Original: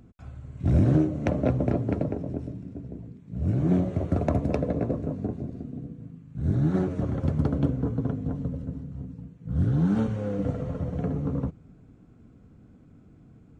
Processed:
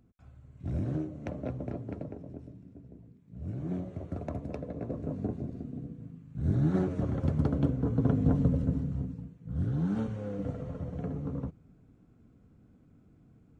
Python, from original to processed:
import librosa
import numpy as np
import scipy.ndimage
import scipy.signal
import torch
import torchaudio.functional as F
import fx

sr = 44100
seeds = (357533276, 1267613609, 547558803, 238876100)

y = fx.gain(x, sr, db=fx.line((4.73, -12.0), (5.17, -3.0), (7.81, -3.0), (8.22, 5.0), (8.9, 5.0), (9.53, -7.0)))